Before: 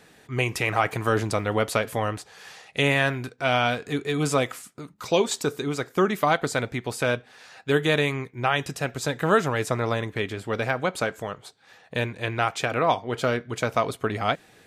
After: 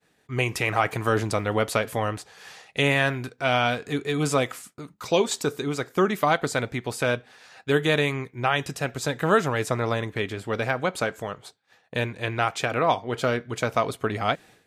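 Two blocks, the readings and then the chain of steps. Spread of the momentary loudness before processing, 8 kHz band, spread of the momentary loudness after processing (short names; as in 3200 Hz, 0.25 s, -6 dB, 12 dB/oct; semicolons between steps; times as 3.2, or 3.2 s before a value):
9 LU, 0.0 dB, 9 LU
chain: expander -45 dBFS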